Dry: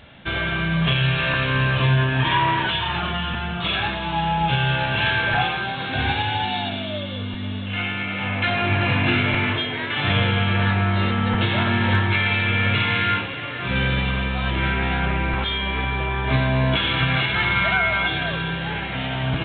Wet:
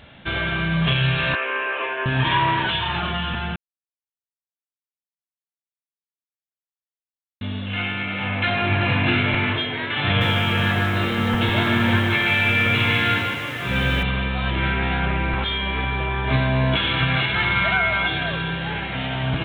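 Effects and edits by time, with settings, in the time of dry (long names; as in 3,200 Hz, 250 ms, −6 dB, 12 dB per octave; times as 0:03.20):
0:01.35–0:02.06: elliptic band-pass filter 370–2,600 Hz
0:03.56–0:07.41: silence
0:10.06–0:14.03: feedback echo at a low word length 150 ms, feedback 35%, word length 7 bits, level −4 dB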